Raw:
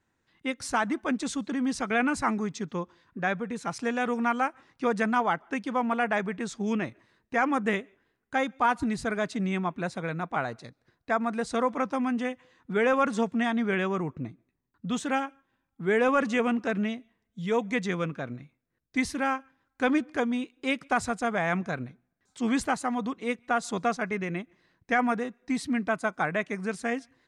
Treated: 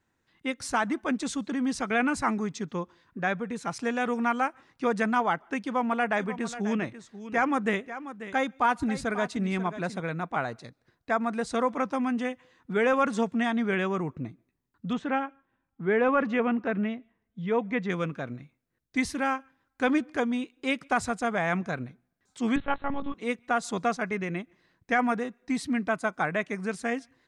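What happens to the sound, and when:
5.65–10.00 s: delay 539 ms -13 dB
14.93–17.90 s: low-pass 2.4 kHz
22.56–23.14 s: monotone LPC vocoder at 8 kHz 280 Hz

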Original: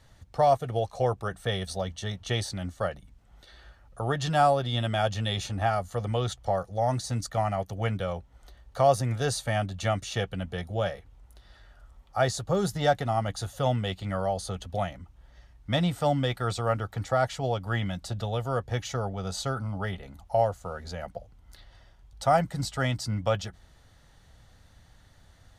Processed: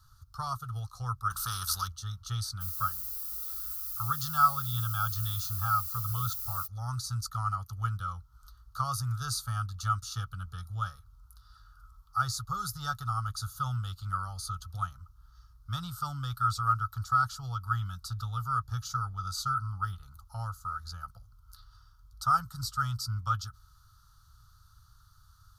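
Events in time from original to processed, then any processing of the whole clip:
1.30–1.88 s: spectrum-flattening compressor 2:1
2.60–6.66 s: added noise blue -44 dBFS
whole clip: FFT filter 120 Hz 0 dB, 230 Hz -22 dB, 630 Hz -30 dB, 1.3 kHz +12 dB, 2 kHz -26 dB, 4.7 kHz +4 dB, 8.1 kHz -2 dB, 12 kHz +10 dB; trim -2.5 dB

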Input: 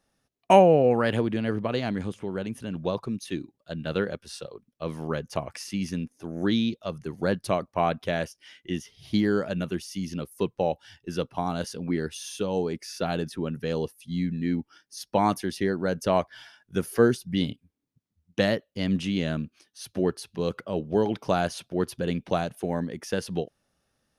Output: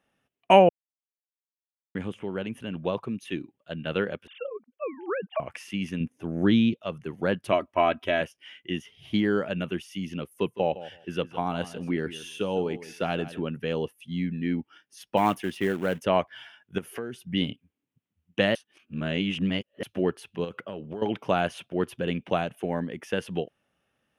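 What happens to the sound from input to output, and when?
0.69–1.95 s: mute
4.27–5.40 s: formants replaced by sine waves
6.00–6.74 s: bass shelf 230 Hz +10 dB
7.52–8.21 s: comb 3.1 ms
10.30–13.42 s: feedback delay 161 ms, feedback 16%, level -15 dB
15.17–16.03 s: short-mantissa float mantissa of 2-bit
16.78–17.30 s: compression 8:1, threshold -30 dBFS
18.55–19.83 s: reverse
20.44–21.02 s: compression 12:1, threshold -30 dBFS
whole clip: high-pass 120 Hz 6 dB/octave; resonant high shelf 3.6 kHz -6.5 dB, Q 3

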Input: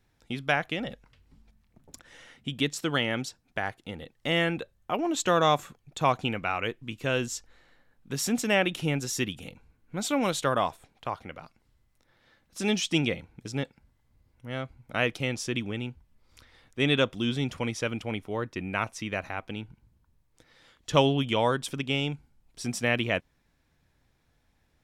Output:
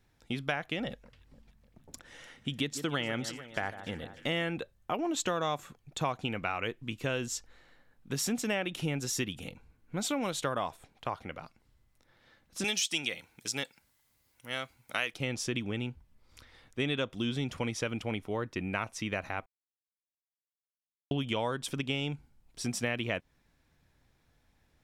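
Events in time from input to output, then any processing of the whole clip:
0.89–4.43 s: echo whose repeats swap between lows and highs 149 ms, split 1.7 kHz, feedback 71%, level -14 dB
12.64–15.14 s: tilt EQ +4 dB/octave
19.46–21.11 s: mute
whole clip: compression 4:1, threshold -29 dBFS

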